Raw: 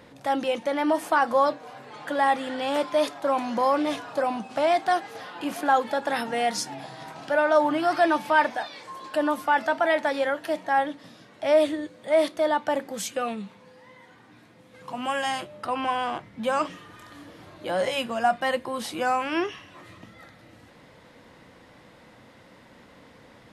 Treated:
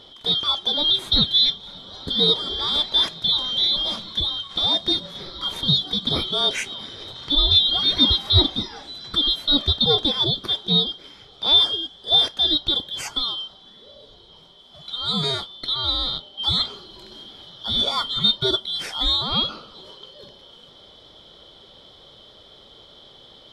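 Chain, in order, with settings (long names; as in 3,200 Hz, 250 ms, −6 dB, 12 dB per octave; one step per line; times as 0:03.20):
band-splitting scrambler in four parts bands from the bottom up 2413
low-pass filter 2,800 Hz 6 dB per octave
0:03.64–0:06.07: dynamic equaliser 2,000 Hz, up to −5 dB, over −33 dBFS, Q 0.72
level +7 dB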